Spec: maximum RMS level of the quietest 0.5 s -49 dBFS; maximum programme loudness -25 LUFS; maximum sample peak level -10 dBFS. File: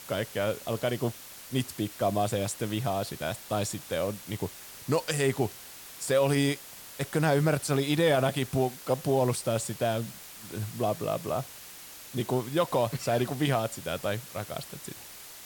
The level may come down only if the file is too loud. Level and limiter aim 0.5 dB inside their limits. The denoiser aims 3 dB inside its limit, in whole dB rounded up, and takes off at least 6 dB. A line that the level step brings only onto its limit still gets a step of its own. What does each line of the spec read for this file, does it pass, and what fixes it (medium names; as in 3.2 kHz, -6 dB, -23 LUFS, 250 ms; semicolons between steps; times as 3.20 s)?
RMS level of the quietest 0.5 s -46 dBFS: fail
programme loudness -29.5 LUFS: pass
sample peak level -14.0 dBFS: pass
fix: noise reduction 6 dB, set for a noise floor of -46 dBFS